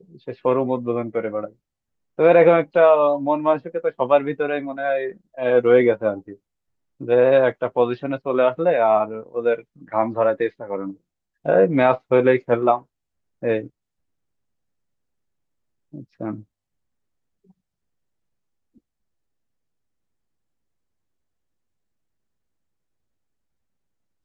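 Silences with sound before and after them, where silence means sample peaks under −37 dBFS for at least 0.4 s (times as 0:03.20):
0:01.49–0:02.19
0:06.34–0:07.01
0:10.93–0:11.45
0:12.81–0:13.43
0:13.67–0:15.94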